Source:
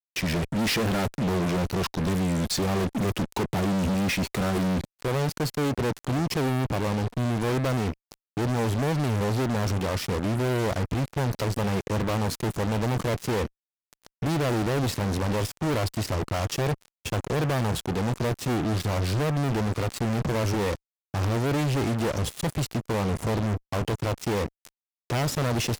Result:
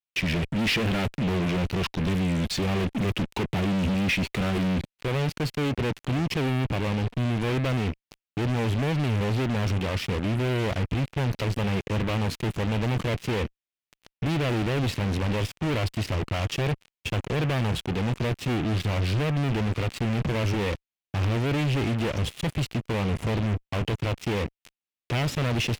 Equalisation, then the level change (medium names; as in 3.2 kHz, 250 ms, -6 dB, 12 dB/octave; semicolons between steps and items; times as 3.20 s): tilt shelf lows +3.5 dB, about 830 Hz; bass shelf 210 Hz +3.5 dB; peaking EQ 2.7 kHz +12.5 dB 1.5 oct; -5.0 dB